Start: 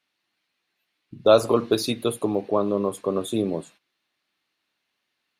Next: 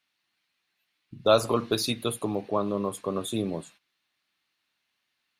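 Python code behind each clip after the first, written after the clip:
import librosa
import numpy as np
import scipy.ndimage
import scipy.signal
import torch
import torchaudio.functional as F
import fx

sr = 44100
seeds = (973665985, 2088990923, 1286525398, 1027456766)

y = fx.peak_eq(x, sr, hz=410.0, db=-6.5, octaves=1.9)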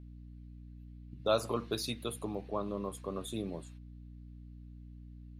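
y = fx.add_hum(x, sr, base_hz=60, snr_db=10)
y = F.gain(torch.from_numpy(y), -9.0).numpy()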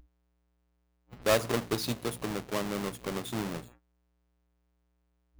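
y = fx.halfwave_hold(x, sr)
y = fx.noise_reduce_blind(y, sr, reduce_db=30)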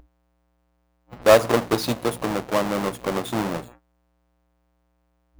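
y = fx.peak_eq(x, sr, hz=690.0, db=8.0, octaves=2.6)
y = fx.notch(y, sr, hz=410.0, q=12.0)
y = F.gain(torch.from_numpy(y), 5.0).numpy()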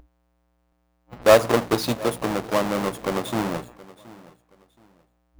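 y = fx.echo_feedback(x, sr, ms=723, feedback_pct=27, wet_db=-20.5)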